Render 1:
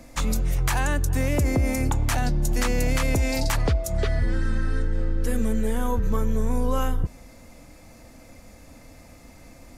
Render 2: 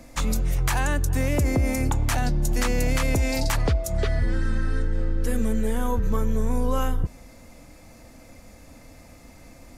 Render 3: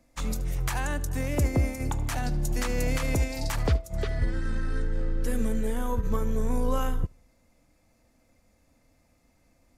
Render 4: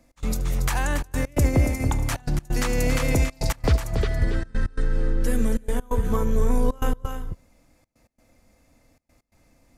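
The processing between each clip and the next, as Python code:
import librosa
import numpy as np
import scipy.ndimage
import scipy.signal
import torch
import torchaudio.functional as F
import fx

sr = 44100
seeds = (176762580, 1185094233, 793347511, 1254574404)

y1 = x
y2 = fx.echo_feedback(y1, sr, ms=75, feedback_pct=45, wet_db=-17.0)
y2 = fx.upward_expand(y2, sr, threshold_db=-30.0, expansion=2.5)
y3 = y2 + 10.0 ** (-8.5 / 20.0) * np.pad(y2, (int(280 * sr / 1000.0), 0))[:len(y2)]
y3 = fx.step_gate(y3, sr, bpm=132, pattern='x.xxxxxxx.', floor_db=-24.0, edge_ms=4.5)
y3 = y3 * librosa.db_to_amplitude(4.5)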